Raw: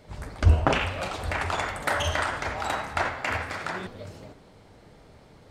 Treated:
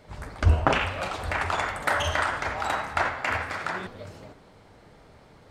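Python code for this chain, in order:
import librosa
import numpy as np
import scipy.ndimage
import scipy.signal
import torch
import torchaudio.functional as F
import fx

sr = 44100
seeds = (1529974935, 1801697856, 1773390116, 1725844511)

y = fx.peak_eq(x, sr, hz=1300.0, db=4.0, octaves=1.9)
y = F.gain(torch.from_numpy(y), -1.5).numpy()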